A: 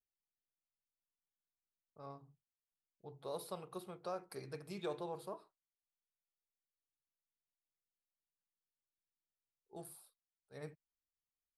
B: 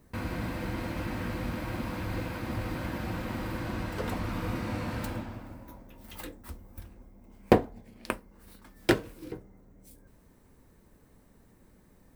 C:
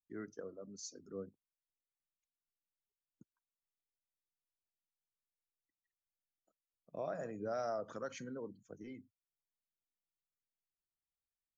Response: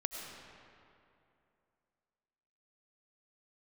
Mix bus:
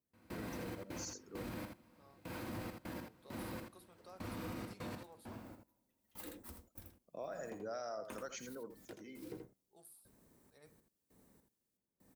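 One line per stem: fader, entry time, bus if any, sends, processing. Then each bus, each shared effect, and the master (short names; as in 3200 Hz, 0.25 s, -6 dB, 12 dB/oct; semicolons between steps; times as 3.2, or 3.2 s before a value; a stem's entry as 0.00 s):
-14.0 dB, 0.00 s, no send, no echo send, dry
-8.0 dB, 0.00 s, no send, echo send -7 dB, step gate "..xxx.x..xx.." 100 bpm -24 dB; tilt shelf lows +4.5 dB, about 780 Hz
-2.0 dB, 0.20 s, no send, echo send -10.5 dB, dry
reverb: off
echo: echo 81 ms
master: HPF 230 Hz 6 dB/oct; high shelf 3800 Hz +11 dB; limiter -35 dBFS, peak gain reduction 8.5 dB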